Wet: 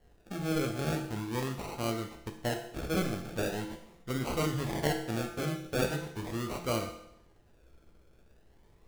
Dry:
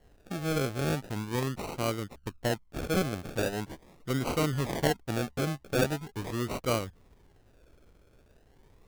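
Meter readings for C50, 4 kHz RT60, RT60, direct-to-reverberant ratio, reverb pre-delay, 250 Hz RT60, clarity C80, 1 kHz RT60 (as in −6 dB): 7.5 dB, 0.75 s, 0.80 s, 3.0 dB, 6 ms, 0.75 s, 10.0 dB, 0.75 s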